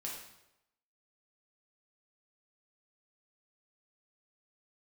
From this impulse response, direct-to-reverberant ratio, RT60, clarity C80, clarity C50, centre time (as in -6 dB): -3.5 dB, 0.90 s, 6.0 dB, 3.0 dB, 48 ms